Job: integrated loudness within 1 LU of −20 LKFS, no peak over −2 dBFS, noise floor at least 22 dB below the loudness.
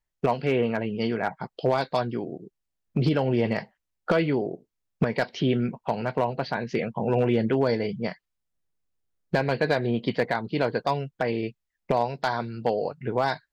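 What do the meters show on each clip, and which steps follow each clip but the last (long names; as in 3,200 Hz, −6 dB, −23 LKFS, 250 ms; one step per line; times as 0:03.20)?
share of clipped samples 0.3%; peaks flattened at −14.0 dBFS; integrated loudness −27.0 LKFS; sample peak −14.0 dBFS; target loudness −20.0 LKFS
→ clipped peaks rebuilt −14 dBFS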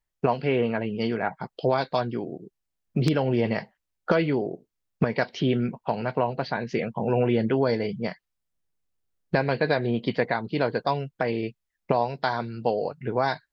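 share of clipped samples 0.0%; integrated loudness −26.5 LKFS; sample peak −5.0 dBFS; target loudness −20.0 LKFS
→ level +6.5 dB
brickwall limiter −2 dBFS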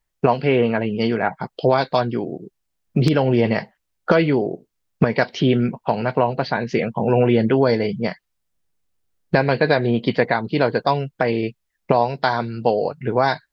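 integrated loudness −20.0 LKFS; sample peak −2.0 dBFS; background noise floor −75 dBFS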